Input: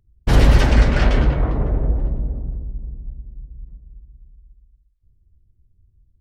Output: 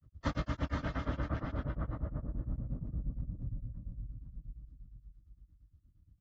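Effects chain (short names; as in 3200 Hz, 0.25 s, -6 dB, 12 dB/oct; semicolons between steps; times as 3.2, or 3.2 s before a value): Doppler pass-by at 1.43, 41 m/s, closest 21 m; notches 50/100/150/200 Hz; shoebox room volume 760 m³, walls furnished, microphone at 2.6 m; compressor 5:1, threshold -41 dBFS, peak gain reduction 28 dB; thirty-one-band EQ 100 Hz +5 dB, 400 Hz -12 dB, 800 Hz -5 dB, 1250 Hz +9 dB, 2500 Hz -7 dB; grains 96 ms, grains 8.6/s, spray 13 ms, pitch spread up and down by 0 st; on a send: echo 0.5 s -4 dB; on the sum: vocal rider within 4 dB 0.5 s; HPF 75 Hz 12 dB/oct; air absorption 94 m; gain +14 dB; AAC 24 kbps 44100 Hz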